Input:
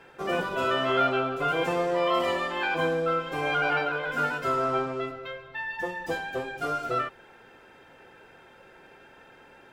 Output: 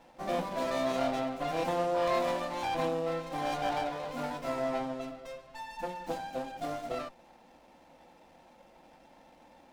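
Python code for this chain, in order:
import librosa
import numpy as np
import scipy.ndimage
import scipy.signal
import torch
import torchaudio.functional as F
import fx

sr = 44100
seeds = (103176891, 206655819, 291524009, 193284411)

y = fx.fixed_phaser(x, sr, hz=410.0, stages=6)
y = fx.running_max(y, sr, window=9)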